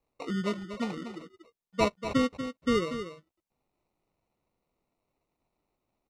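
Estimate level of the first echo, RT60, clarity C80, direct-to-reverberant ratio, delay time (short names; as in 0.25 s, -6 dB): -10.0 dB, none, none, none, 0.239 s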